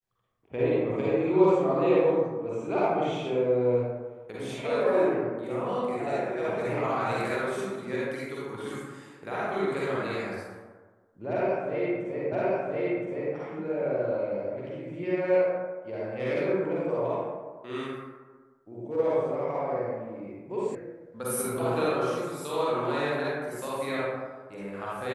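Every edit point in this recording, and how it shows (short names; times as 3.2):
12.32 repeat of the last 1.02 s
20.75 sound cut off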